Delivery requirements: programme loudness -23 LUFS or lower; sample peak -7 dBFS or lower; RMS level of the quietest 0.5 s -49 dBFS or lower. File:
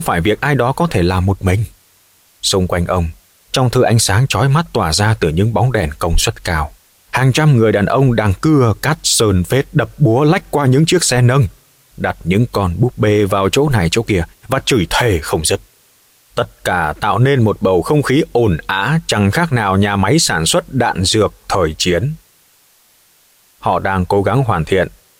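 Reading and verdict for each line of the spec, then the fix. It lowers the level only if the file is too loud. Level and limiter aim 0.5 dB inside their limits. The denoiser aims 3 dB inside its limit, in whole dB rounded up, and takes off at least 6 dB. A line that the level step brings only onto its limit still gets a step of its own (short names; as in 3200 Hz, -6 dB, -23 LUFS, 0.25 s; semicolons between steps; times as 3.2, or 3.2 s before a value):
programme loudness -14.5 LUFS: fail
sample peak -3.5 dBFS: fail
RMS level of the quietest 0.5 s -52 dBFS: OK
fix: gain -9 dB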